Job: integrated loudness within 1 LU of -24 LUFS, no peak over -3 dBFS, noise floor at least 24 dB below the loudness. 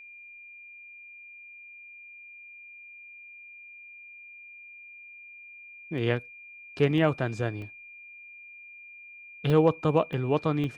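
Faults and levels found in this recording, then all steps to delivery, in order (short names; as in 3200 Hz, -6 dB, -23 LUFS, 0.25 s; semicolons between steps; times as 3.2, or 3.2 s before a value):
dropouts 6; longest dropout 1.2 ms; steady tone 2400 Hz; tone level -45 dBFS; loudness -27.0 LUFS; peak -9.0 dBFS; loudness target -24.0 LUFS
-> interpolate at 5.98/6.98/7.62/9.5/10.13/10.64, 1.2 ms; notch 2400 Hz, Q 30; gain +3 dB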